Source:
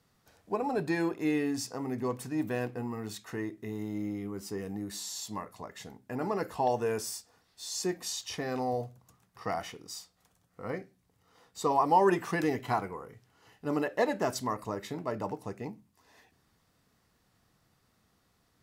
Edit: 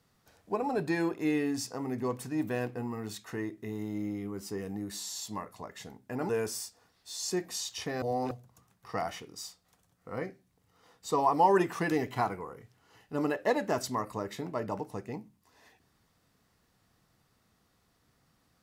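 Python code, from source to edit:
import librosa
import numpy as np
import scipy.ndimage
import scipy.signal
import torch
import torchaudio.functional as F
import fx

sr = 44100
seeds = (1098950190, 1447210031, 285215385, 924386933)

y = fx.edit(x, sr, fx.cut(start_s=6.29, length_s=0.52),
    fx.reverse_span(start_s=8.54, length_s=0.29), tone=tone)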